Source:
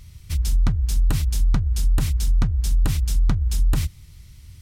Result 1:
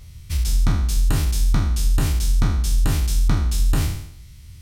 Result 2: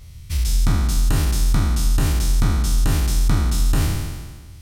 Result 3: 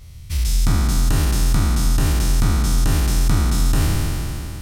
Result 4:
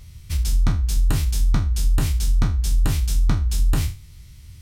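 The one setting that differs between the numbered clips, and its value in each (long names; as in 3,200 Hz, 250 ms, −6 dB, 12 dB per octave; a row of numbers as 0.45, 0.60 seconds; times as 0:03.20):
peak hold with a decay on every bin, RT60: 0.72, 1.52, 3.15, 0.33 seconds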